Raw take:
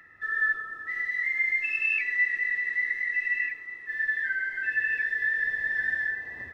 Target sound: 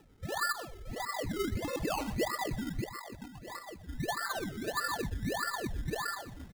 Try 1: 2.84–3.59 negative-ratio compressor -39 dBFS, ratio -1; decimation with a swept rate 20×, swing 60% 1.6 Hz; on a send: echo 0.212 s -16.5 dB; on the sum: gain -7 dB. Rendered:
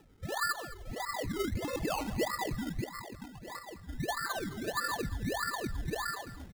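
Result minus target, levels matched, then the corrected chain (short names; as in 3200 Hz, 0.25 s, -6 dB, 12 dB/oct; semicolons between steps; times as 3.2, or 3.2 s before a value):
echo 89 ms late
2.84–3.59 negative-ratio compressor -39 dBFS, ratio -1; decimation with a swept rate 20×, swing 60% 1.6 Hz; on a send: echo 0.123 s -16.5 dB; on the sum: gain -7 dB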